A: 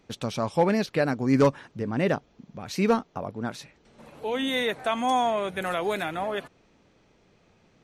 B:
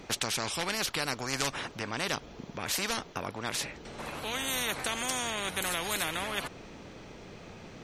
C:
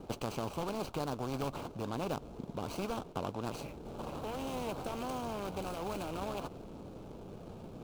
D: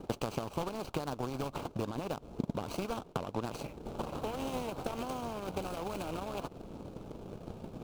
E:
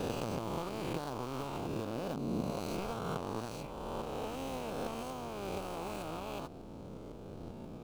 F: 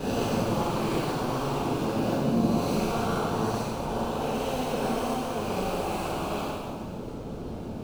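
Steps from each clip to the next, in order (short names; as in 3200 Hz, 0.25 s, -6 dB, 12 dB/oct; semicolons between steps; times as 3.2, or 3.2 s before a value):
spectral compressor 4:1
median filter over 25 samples; bell 1900 Hz -10 dB 0.43 oct; gain +1 dB
limiter -30 dBFS, peak gain reduction 9.5 dB; transient shaper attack +10 dB, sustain -7 dB; gain +1 dB
spectral swells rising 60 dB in 2.17 s; gain -6 dB
plate-style reverb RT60 2 s, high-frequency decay 0.9×, DRR -10 dB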